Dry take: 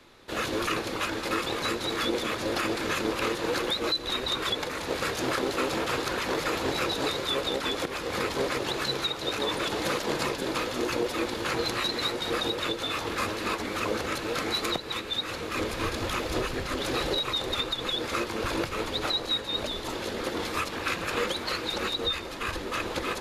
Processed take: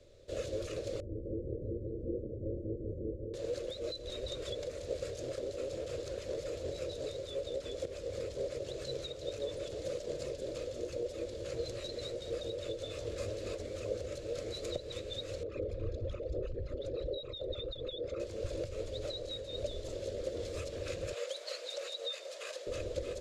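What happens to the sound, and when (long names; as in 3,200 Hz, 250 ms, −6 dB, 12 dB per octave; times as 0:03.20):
0:01.00–0:03.34: inverse Chebyshev low-pass filter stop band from 1,000 Hz, stop band 50 dB
0:15.43–0:18.20: spectral envelope exaggerated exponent 2
0:21.13–0:22.67: high-pass filter 620 Hz 24 dB per octave
whole clip: drawn EQ curve 100 Hz 0 dB, 190 Hz −14 dB, 280 Hz −15 dB, 580 Hz +2 dB, 830 Hz −28 dB, 7,600 Hz −8 dB, 12,000 Hz −23 dB; speech leveller 0.5 s; level −2 dB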